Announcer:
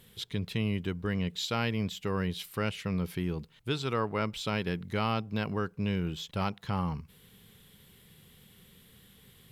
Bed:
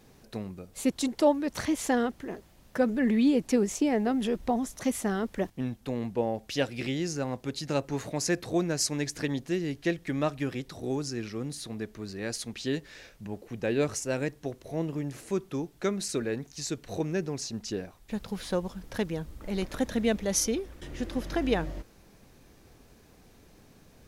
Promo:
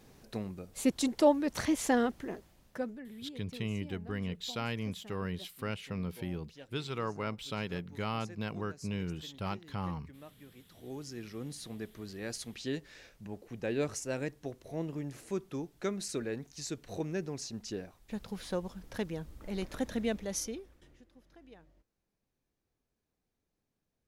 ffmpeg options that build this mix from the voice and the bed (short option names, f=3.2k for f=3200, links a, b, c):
-filter_complex "[0:a]adelay=3050,volume=-5.5dB[a];[1:a]volume=16.5dB,afade=t=out:st=2.22:d=0.83:silence=0.0794328,afade=t=in:st=10.53:d=1.03:silence=0.125893,afade=t=out:st=19.97:d=1.07:silence=0.0668344[b];[a][b]amix=inputs=2:normalize=0"